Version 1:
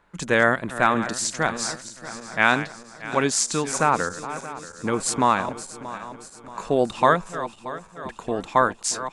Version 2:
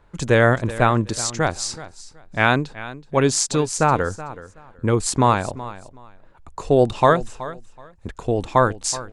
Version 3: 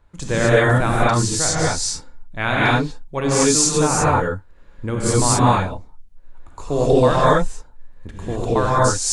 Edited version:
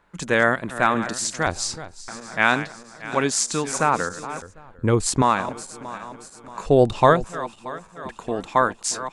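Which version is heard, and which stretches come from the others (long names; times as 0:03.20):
1
0:01.47–0:02.08: punch in from 2
0:04.42–0:05.22: punch in from 2
0:06.66–0:07.24: punch in from 2
not used: 3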